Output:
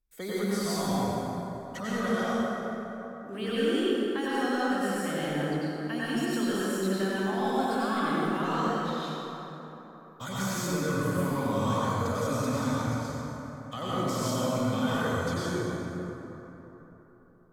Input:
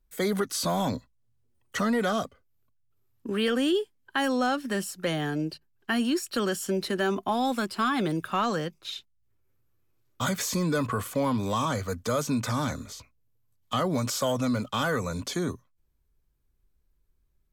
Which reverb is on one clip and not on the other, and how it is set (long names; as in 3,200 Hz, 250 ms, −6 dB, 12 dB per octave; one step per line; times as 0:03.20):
dense smooth reverb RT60 3.8 s, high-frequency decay 0.45×, pre-delay 80 ms, DRR −9 dB
level −11 dB